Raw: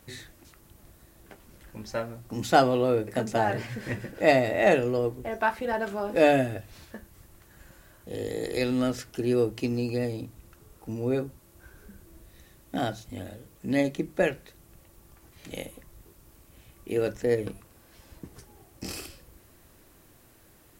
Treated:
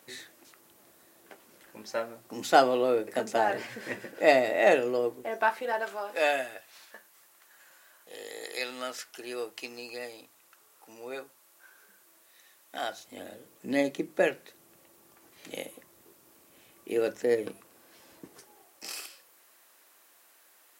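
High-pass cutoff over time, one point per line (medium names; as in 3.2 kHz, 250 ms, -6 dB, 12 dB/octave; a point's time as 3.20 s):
5.42 s 340 Hz
6.15 s 840 Hz
12.76 s 840 Hz
13.33 s 290 Hz
18.25 s 290 Hz
18.88 s 790 Hz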